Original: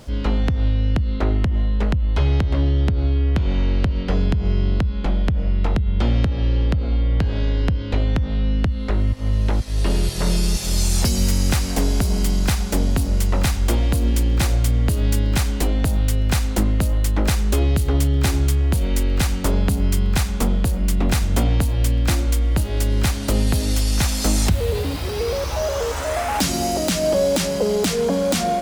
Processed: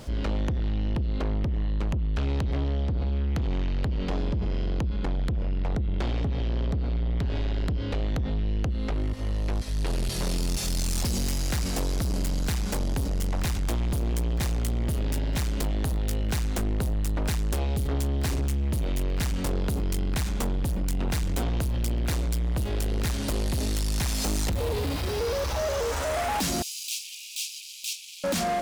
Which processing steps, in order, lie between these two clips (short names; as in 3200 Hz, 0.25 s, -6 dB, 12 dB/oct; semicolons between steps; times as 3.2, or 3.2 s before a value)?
soft clip -24 dBFS, distortion -8 dB; 26.62–28.24 steep high-pass 2400 Hz 96 dB/oct